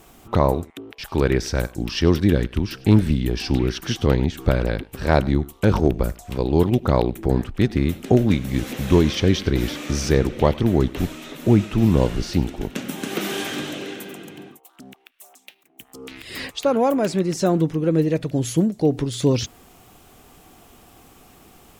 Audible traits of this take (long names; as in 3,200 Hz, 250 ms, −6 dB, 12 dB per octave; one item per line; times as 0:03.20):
background noise floor −53 dBFS
spectral slope −6.5 dB per octave